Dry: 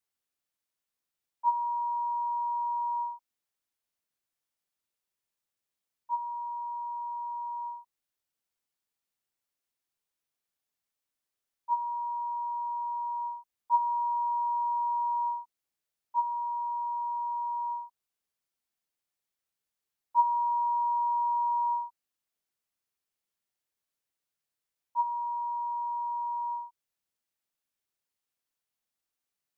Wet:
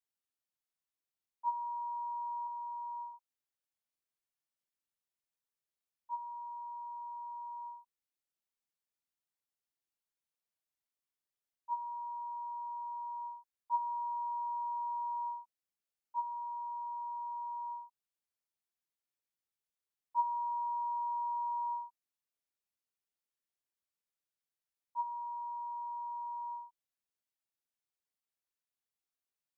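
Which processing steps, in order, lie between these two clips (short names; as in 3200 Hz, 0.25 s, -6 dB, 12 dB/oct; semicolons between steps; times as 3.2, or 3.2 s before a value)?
2.47–3.14 HPF 880 Hz 6 dB/oct; gain -8 dB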